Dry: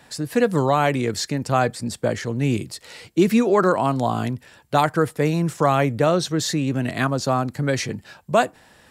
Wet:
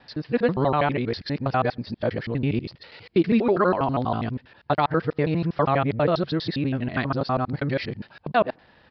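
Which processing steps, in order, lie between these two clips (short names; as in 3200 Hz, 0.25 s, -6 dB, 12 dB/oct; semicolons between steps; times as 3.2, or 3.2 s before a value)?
local time reversal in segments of 81 ms; downsampling 11025 Hz; air absorption 79 m; gain -2.5 dB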